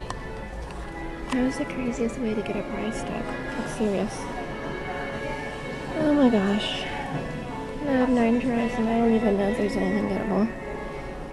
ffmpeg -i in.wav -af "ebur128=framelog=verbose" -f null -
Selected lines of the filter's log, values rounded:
Integrated loudness:
  I:         -26.5 LUFS
  Threshold: -36.5 LUFS
Loudness range:
  LRA:         5.9 LU
  Threshold: -46.1 LUFS
  LRA low:   -29.8 LUFS
  LRA high:  -23.9 LUFS